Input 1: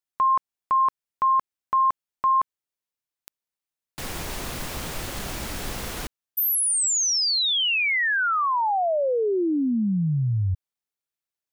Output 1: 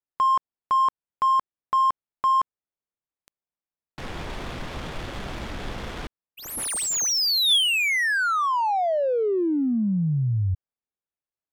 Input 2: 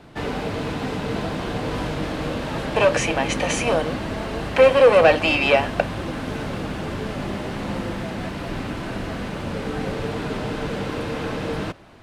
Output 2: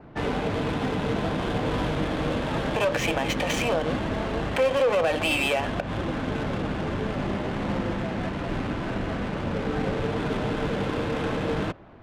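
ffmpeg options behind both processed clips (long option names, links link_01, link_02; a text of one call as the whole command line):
ffmpeg -i in.wav -af "adynamicequalizer=threshold=0.00355:dfrequency=3400:dqfactor=7.6:tfrequency=3400:tqfactor=7.6:attack=5:release=100:ratio=0.375:range=3:mode=boostabove:tftype=bell,alimiter=limit=-14.5dB:level=0:latency=1:release=122,adynamicsmooth=sensitivity=5.5:basefreq=1700" out.wav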